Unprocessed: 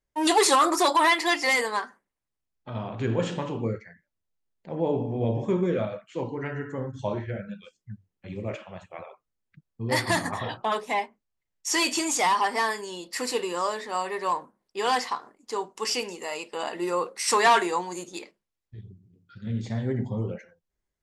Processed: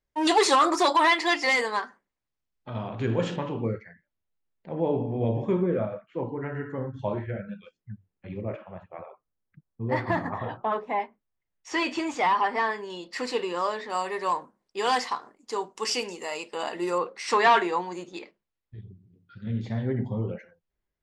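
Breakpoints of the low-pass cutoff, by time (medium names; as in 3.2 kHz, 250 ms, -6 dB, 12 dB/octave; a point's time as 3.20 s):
6.1 kHz
from 3.36 s 3.4 kHz
from 5.62 s 1.6 kHz
from 6.55 s 2.6 kHz
from 8.41 s 1.5 kHz
from 11.00 s 2.6 kHz
from 12.90 s 4.3 kHz
from 13.90 s 8.9 kHz
from 16.98 s 3.7 kHz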